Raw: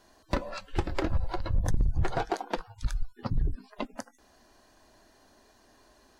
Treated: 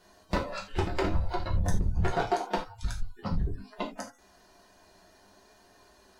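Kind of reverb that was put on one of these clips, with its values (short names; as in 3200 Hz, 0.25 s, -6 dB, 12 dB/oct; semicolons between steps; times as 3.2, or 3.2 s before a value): non-linear reverb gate 0.11 s falling, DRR -2 dB; gain -2 dB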